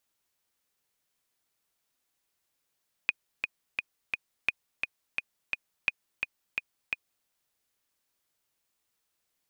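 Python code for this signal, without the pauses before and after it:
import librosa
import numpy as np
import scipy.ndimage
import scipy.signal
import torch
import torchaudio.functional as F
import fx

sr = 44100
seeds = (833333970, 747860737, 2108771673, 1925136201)

y = fx.click_track(sr, bpm=172, beats=4, bars=3, hz=2480.0, accent_db=5.0, level_db=-11.0)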